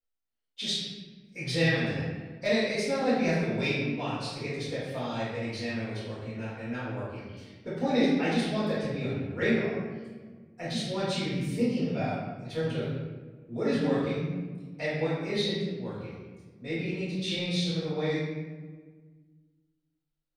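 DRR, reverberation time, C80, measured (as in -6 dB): -11.5 dB, 1.5 s, 2.0 dB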